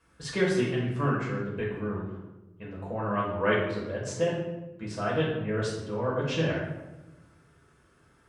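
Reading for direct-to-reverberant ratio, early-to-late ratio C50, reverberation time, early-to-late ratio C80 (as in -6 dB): -6.5 dB, 2.0 dB, 1.1 s, 5.0 dB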